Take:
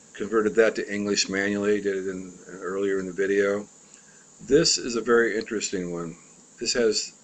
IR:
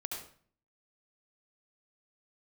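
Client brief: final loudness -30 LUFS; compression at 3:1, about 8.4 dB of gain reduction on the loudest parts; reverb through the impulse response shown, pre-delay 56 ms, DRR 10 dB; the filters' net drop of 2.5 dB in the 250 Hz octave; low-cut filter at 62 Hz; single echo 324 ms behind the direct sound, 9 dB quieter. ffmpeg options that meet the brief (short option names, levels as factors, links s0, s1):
-filter_complex "[0:a]highpass=62,equalizer=f=250:t=o:g=-3.5,acompressor=threshold=0.0501:ratio=3,aecho=1:1:324:0.355,asplit=2[s0][s1];[1:a]atrim=start_sample=2205,adelay=56[s2];[s1][s2]afir=irnorm=-1:irlink=0,volume=0.299[s3];[s0][s3]amix=inputs=2:normalize=0,volume=0.944"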